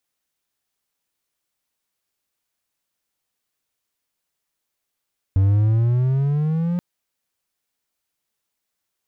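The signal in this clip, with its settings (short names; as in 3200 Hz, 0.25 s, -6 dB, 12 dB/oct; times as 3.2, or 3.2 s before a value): gliding synth tone triangle, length 1.43 s, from 94.5 Hz, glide +11 st, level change -6.5 dB, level -10.5 dB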